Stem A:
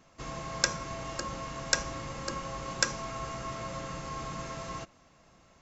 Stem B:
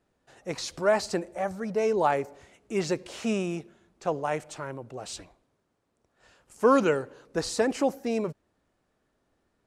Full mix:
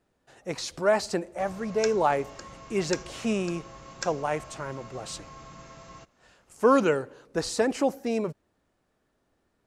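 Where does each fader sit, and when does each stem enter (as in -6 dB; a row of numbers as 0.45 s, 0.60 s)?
-8.0 dB, +0.5 dB; 1.20 s, 0.00 s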